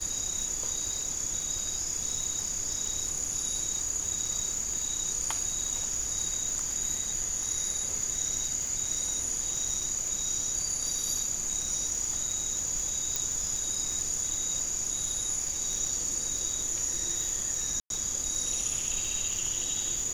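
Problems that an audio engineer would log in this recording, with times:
crackle 130/s -35 dBFS
13.16 pop
17.8–17.9 gap 0.102 s

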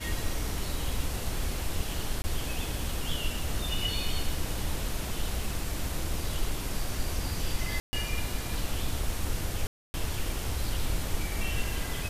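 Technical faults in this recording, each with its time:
2.22–2.24 gap 20 ms
7.8–7.93 gap 0.13 s
9.67–9.94 gap 0.27 s

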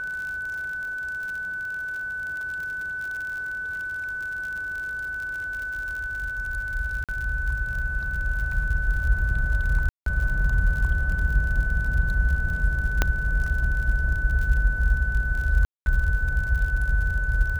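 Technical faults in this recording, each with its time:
crackle 56/s -31 dBFS
tone 1500 Hz -28 dBFS
7.04–7.09 gap 47 ms
9.89–10.06 gap 0.173 s
13.02 pop -6 dBFS
15.65–15.86 gap 0.211 s

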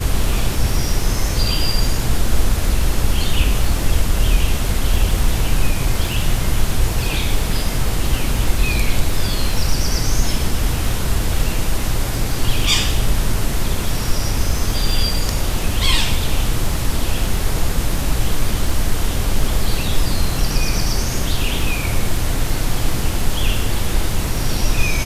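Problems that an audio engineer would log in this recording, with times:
crackle 16/s

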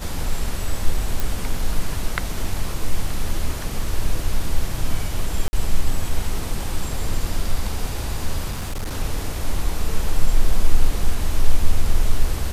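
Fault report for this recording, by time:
1.2 pop
5.48–5.53 gap 50 ms
8.51–8.96 clipped -22.5 dBFS

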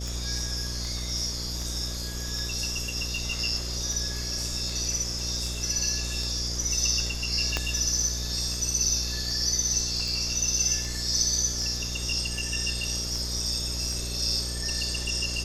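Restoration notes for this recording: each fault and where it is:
buzz 60 Hz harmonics 11 -34 dBFS
tick 78 rpm
7.57 pop -11 dBFS

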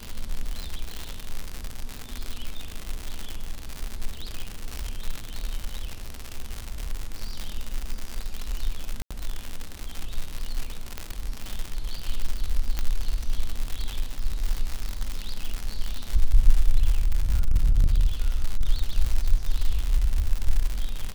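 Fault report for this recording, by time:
crackle 140/s -24 dBFS
9.02–9.11 gap 86 ms
10.98 pop -15 dBFS
12.79 pop -12 dBFS
17.01–18.65 clipped -14.5 dBFS

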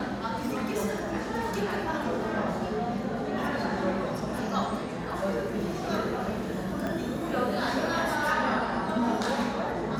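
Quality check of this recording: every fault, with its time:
6.87 pop -20 dBFS

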